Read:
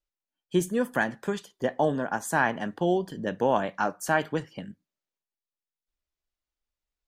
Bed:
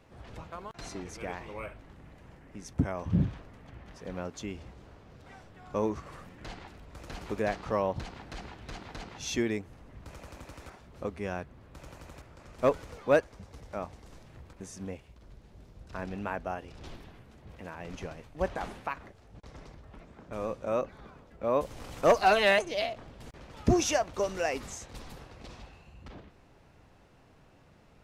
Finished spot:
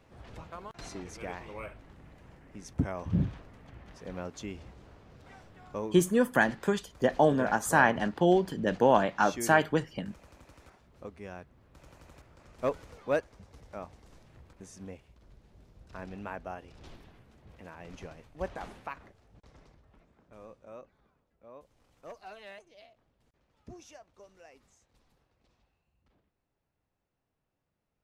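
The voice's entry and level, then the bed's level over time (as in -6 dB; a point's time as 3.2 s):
5.40 s, +1.5 dB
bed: 5.63 s -1.5 dB
5.91 s -8.5 dB
11.47 s -8.5 dB
12.35 s -5 dB
19 s -5 dB
21.68 s -24.5 dB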